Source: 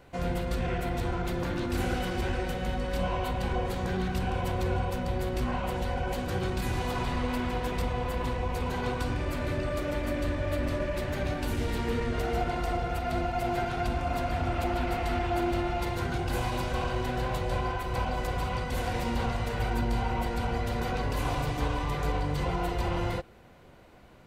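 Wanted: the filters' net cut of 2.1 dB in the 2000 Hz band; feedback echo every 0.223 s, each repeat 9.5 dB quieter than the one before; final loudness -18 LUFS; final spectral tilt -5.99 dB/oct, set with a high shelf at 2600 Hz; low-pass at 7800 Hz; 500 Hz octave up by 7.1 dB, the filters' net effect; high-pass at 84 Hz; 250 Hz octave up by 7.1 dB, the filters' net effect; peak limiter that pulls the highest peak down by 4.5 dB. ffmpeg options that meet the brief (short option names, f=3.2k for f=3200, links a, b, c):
-af "highpass=84,lowpass=7.8k,equalizer=f=250:t=o:g=7,equalizer=f=500:t=o:g=7,equalizer=f=2k:t=o:g=-5,highshelf=f=2.6k:g=3.5,alimiter=limit=-18dB:level=0:latency=1,aecho=1:1:223|446|669|892:0.335|0.111|0.0365|0.012,volume=9.5dB"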